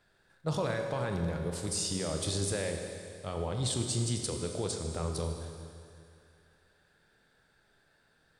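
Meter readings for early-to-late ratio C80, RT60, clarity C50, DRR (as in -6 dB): 5.0 dB, 2.4 s, 4.0 dB, 3.0 dB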